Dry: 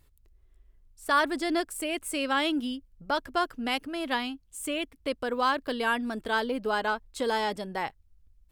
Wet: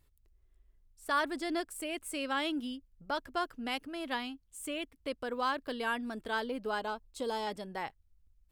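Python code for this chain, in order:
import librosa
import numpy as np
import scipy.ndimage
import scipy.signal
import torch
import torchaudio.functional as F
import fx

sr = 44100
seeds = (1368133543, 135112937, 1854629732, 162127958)

y = fx.peak_eq(x, sr, hz=1800.0, db=-9.0, octaves=0.79, at=(6.79, 7.47))
y = F.gain(torch.from_numpy(y), -6.5).numpy()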